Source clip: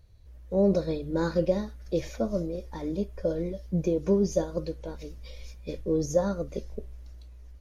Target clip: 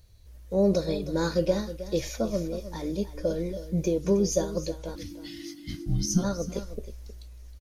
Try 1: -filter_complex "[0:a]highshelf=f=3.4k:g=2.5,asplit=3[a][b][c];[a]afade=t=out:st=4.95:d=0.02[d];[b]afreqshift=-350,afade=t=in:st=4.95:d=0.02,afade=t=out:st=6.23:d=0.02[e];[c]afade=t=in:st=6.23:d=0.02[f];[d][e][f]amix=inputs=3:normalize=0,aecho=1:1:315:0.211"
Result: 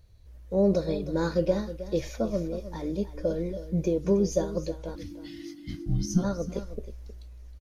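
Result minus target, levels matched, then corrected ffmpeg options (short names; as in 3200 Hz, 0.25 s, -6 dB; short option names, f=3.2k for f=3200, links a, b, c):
8000 Hz band -7.0 dB
-filter_complex "[0:a]highshelf=f=3.4k:g=12,asplit=3[a][b][c];[a]afade=t=out:st=4.95:d=0.02[d];[b]afreqshift=-350,afade=t=in:st=4.95:d=0.02,afade=t=out:st=6.23:d=0.02[e];[c]afade=t=in:st=6.23:d=0.02[f];[d][e][f]amix=inputs=3:normalize=0,aecho=1:1:315:0.211"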